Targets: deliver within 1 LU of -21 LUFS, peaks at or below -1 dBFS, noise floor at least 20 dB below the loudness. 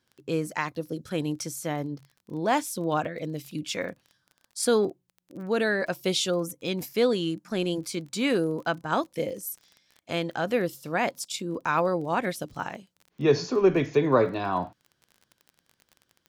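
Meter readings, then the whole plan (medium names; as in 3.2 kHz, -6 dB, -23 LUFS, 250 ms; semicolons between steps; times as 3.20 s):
tick rate 27 per s; loudness -28.0 LUFS; peak level -9.5 dBFS; loudness target -21.0 LUFS
-> de-click; trim +7 dB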